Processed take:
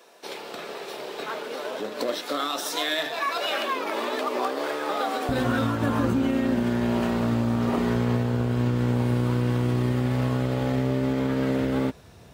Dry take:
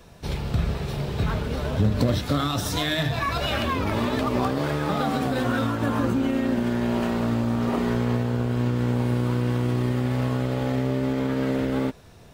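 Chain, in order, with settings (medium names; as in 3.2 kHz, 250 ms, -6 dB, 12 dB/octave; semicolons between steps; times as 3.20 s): high-pass 350 Hz 24 dB/octave, from 5.29 s 46 Hz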